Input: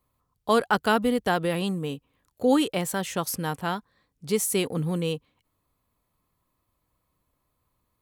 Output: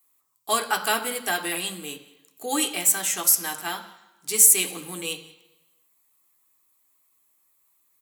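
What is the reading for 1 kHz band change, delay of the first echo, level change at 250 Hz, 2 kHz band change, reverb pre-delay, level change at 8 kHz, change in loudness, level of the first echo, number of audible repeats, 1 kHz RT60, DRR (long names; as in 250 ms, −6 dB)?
−1.5 dB, 183 ms, −9.0 dB, +2.0 dB, 3 ms, +14.0 dB, +4.5 dB, −23.0 dB, 1, 1.1 s, 2.5 dB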